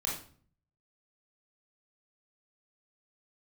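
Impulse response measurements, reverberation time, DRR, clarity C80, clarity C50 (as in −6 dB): 0.50 s, −3.5 dB, 9.5 dB, 4.0 dB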